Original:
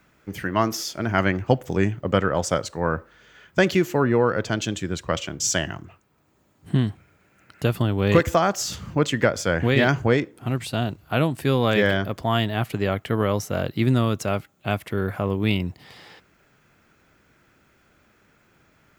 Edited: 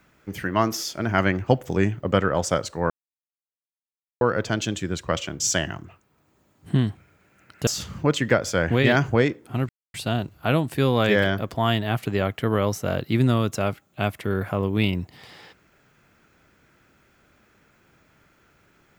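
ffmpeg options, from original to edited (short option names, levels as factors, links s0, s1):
-filter_complex "[0:a]asplit=5[s0][s1][s2][s3][s4];[s0]atrim=end=2.9,asetpts=PTS-STARTPTS,afade=t=out:st=2.896:d=0.004:c=hsin[s5];[s1]atrim=start=2.9:end=4.21,asetpts=PTS-STARTPTS,volume=0[s6];[s2]atrim=start=4.21:end=7.672,asetpts=PTS-STARTPTS,afade=t=in:d=0.004:c=hsin[s7];[s3]atrim=start=8.588:end=10.61,asetpts=PTS-STARTPTS,afade=t=out:st=2.018:d=0.004:c=hsin,apad=pad_dur=0.25[s8];[s4]atrim=start=10.61,asetpts=PTS-STARTPTS,afade=t=in:d=0.004:c=hsin[s9];[s5][s6][s7]concat=n=3:v=0:a=1[s10];[s8][s9]concat=n=2:v=0:a=1[s11];[s10][s11]acrossfade=d=0.004:c1=hsin:c2=hsin"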